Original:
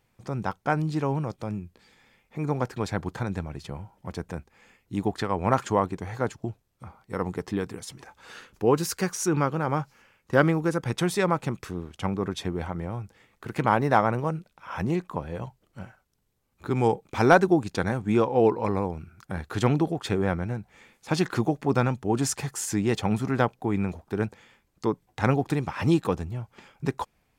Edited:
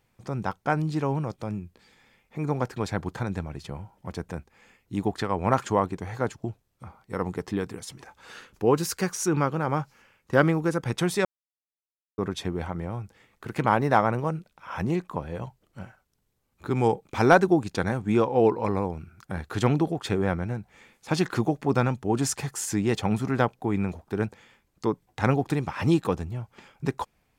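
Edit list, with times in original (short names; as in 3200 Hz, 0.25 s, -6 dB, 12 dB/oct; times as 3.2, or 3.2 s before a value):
11.25–12.18 mute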